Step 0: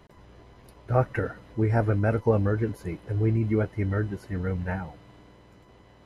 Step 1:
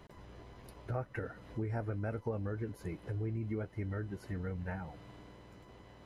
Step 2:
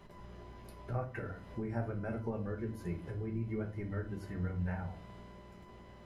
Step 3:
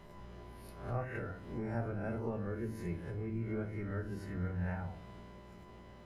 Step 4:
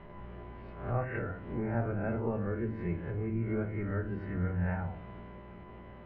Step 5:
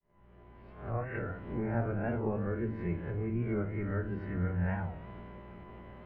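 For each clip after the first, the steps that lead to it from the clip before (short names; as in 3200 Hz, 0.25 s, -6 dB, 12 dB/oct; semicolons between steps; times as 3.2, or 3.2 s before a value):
compressor 3:1, threshold -37 dBFS, peak gain reduction 15.5 dB; gain -1.5 dB
shoebox room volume 230 m³, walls furnished, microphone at 1.2 m; gain -2 dB
spectral swells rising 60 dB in 0.57 s; gain -1.5 dB
LPF 2700 Hz 24 dB/oct; gain +5 dB
opening faded in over 1.36 s; record warp 45 rpm, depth 100 cents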